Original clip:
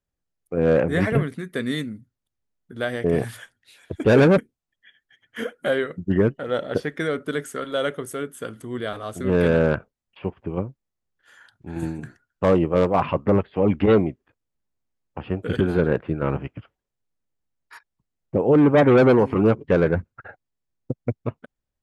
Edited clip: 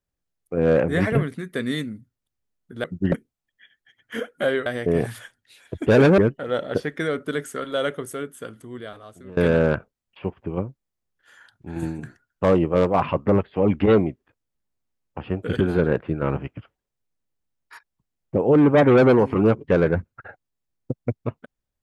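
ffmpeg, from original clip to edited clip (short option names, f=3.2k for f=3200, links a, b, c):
-filter_complex "[0:a]asplit=6[a][b][c][d][e][f];[a]atrim=end=2.842[g];[b]atrim=start=5.898:end=6.182[h];[c]atrim=start=4.358:end=5.902[i];[d]atrim=start=2.838:end=4.362[j];[e]atrim=start=6.178:end=9.37,asetpts=PTS-STARTPTS,afade=t=out:st=1.812:d=1.38:silence=0.0668344[k];[f]atrim=start=9.37,asetpts=PTS-STARTPTS,afade=t=in:d=0.004:c=hsin:silence=0.0668344[l];[g][h]acrossfade=d=0.004:c1=hsin:c2=hsin[m];[m][i]acrossfade=d=0.004:c1=hsin:c2=hsin[n];[n][j]acrossfade=d=0.004:c1=hsin:c2=hsin[o];[k][l]concat=n=2:v=0:a=1[p];[o][p]acrossfade=d=0.004:c1=hsin:c2=hsin"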